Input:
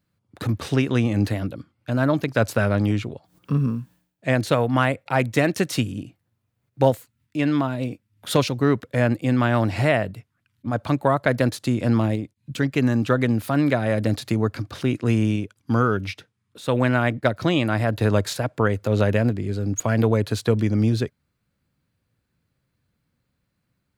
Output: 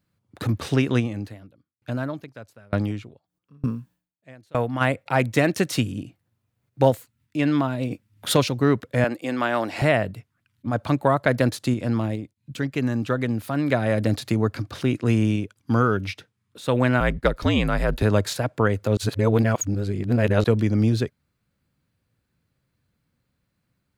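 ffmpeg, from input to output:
-filter_complex "[0:a]asplit=3[s0][s1][s2];[s0]afade=t=out:st=0.99:d=0.02[s3];[s1]aeval=exprs='val(0)*pow(10,-33*if(lt(mod(1.1*n/s,1),2*abs(1.1)/1000),1-mod(1.1*n/s,1)/(2*abs(1.1)/1000),(mod(1.1*n/s,1)-2*abs(1.1)/1000)/(1-2*abs(1.1)/1000))/20)':c=same,afade=t=in:st=0.99:d=0.02,afade=t=out:st=4.8:d=0.02[s4];[s2]afade=t=in:st=4.8:d=0.02[s5];[s3][s4][s5]amix=inputs=3:normalize=0,asplit=3[s6][s7][s8];[s6]afade=t=out:st=7.9:d=0.02[s9];[s7]acontrast=27,afade=t=in:st=7.9:d=0.02,afade=t=out:st=8.32:d=0.02[s10];[s8]afade=t=in:st=8.32:d=0.02[s11];[s9][s10][s11]amix=inputs=3:normalize=0,asettb=1/sr,asplit=3[s12][s13][s14];[s12]atrim=end=9.044[s15];[s13]atrim=start=9.04:end=9.82,asetpts=PTS-STARTPTS,afade=t=in:d=0.004:c=qsin,afade=t=out:st=0.776:d=0.004:c=qsin,highpass=340[s16];[s14]atrim=start=9.816[s17];[s15][s16]acrossfade=d=0.004:c1=hsin:c2=qsin[s18];[s18][s17]acrossfade=d=0.004:c1=qsin:c2=hsin,asettb=1/sr,asplit=3[s19][s20][s21];[s19]atrim=end=17.004[s22];[s20]atrim=start=17:end=18.03,asetpts=PTS-STARTPTS,afade=t=in:d=0.004:c=qsin,afade=t=out:st=1.026:d=0.004:c=qsin,afreqshift=-67[s23];[s21]atrim=start=18.026[s24];[s22][s23]acrossfade=d=0.004:c1=hsin:c2=qsin[s25];[s25][s24]acrossfade=d=0.004:c1=qsin:c2=hsin,asplit=5[s26][s27][s28][s29][s30];[s26]atrim=end=11.742[s31];[s27]atrim=start=11.738:end=13.702,asetpts=PTS-STARTPTS,volume=0.631[s32];[s28]atrim=start=13.698:end=18.972[s33];[s29]atrim=start=18.968:end=20.442,asetpts=PTS-STARTPTS,areverse[s34];[s30]atrim=start=20.438[s35];[s31][s32]acrossfade=d=0.004:c1=hsin:c2=hsin[s36];[s36][s33]acrossfade=d=0.004:c1=hsin:c2=hsin[s37];[s37][s34]acrossfade=d=0.004:c1=hsin:c2=hsin[s38];[s38][s35]acrossfade=d=0.004:c1=hsin:c2=hsin"

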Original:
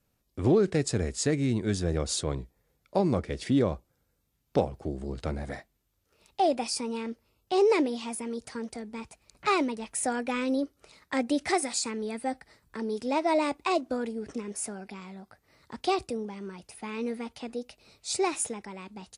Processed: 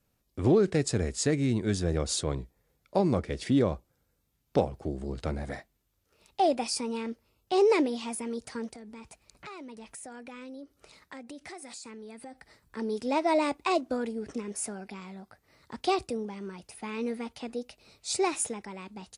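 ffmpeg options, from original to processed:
-filter_complex "[0:a]asettb=1/sr,asplit=3[s0][s1][s2];[s0]atrim=end=8.704[s3];[s1]atrim=start=8.7:end=12.77,asetpts=PTS-STARTPTS,afade=t=in:d=0.004:c=qsin,afade=t=out:st=4.066:d=0.004:c=qsin,acompressor=threshold=0.00794:ratio=6:attack=3.2:release=140:knee=1:detection=peak[s4];[s2]atrim=start=12.766[s5];[s3][s4]acrossfade=d=0.004:c1=hsin:c2=qsin[s6];[s6][s5]acrossfade=d=0.004:c1=qsin:c2=hsin"

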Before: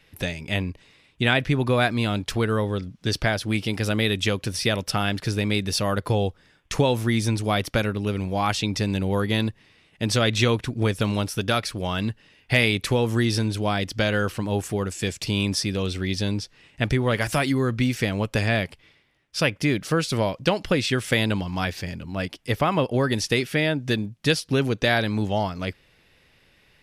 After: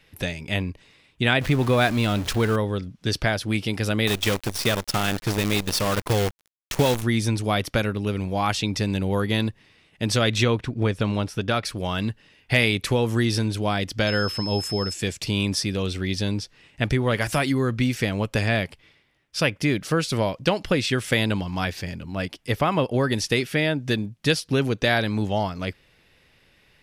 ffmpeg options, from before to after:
-filter_complex "[0:a]asettb=1/sr,asplit=3[s0][s1][s2];[s0]atrim=end=1.414[s3];[s1]atrim=start=1.41:end=2.56,asetpts=PTS-STARTPTS,afade=t=in:d=0.004:c=qsin,afade=t=out:st=1.146:d=0.004:c=qsin,aeval=exprs='val(0)+0.5*0.0376*sgn(val(0))':c=same[s4];[s2]atrim=start=2.556[s5];[s3][s4]acrossfade=d=0.004:c1=hsin:c2=qsin[s6];[s6][s5]acrossfade=d=0.004:c1=qsin:c2=hsin,asettb=1/sr,asplit=3[s7][s8][s9];[s7]atrim=end=4.074[s10];[s8]atrim=start=4.07:end=7.03,asetpts=PTS-STARTPTS,afade=t=in:d=0.004:c=qsin,afade=t=out:st=2.956:d=0.004:c=qsin,acrusher=bits=5:dc=4:mix=0:aa=0.000001[s11];[s9]atrim=start=7.026[s12];[s10][s11]acrossfade=d=0.004:c1=hsin:c2=qsin[s13];[s13][s12]acrossfade=d=0.004:c1=qsin:c2=hsin,asettb=1/sr,asplit=3[s14][s15][s16];[s14]atrim=end=10.434[s17];[s15]atrim=start=10.43:end=11.65,asetpts=PTS-STARTPTS,afade=t=in:d=0.004:c=qsin,afade=t=out:st=1.216:d=0.004:c=qsin,aemphasis=mode=reproduction:type=50kf[s18];[s16]atrim=start=11.646[s19];[s17][s18]acrossfade=d=0.004:c1=hsin:c2=qsin[s20];[s20][s19]acrossfade=d=0.004:c1=qsin:c2=hsin,asettb=1/sr,asplit=3[s21][s22][s23];[s21]atrim=end=14.074[s24];[s22]atrim=start=14.07:end=14.94,asetpts=PTS-STARTPTS,afade=t=in:d=0.004:c=qsin,afade=t=out:st=0.866:d=0.004:c=qsin,aeval=exprs='val(0)+0.0316*sin(2*PI*5200*n/s)':c=same[s25];[s23]atrim=start=14.936[s26];[s24][s25]acrossfade=d=0.004:c1=hsin:c2=qsin[s27];[s27][s26]acrossfade=d=0.004:c1=qsin:c2=hsin"

